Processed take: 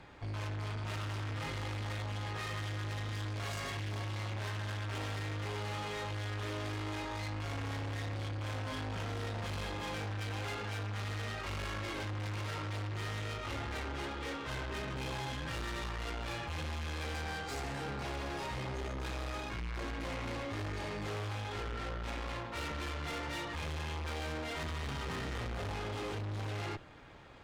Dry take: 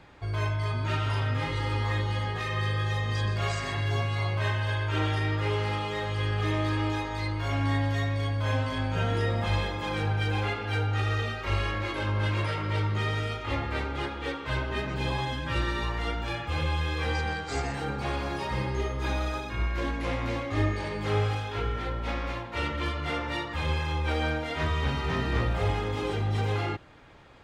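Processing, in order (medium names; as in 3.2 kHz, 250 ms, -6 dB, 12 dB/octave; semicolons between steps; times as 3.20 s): valve stage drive 38 dB, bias 0.55; trim +1 dB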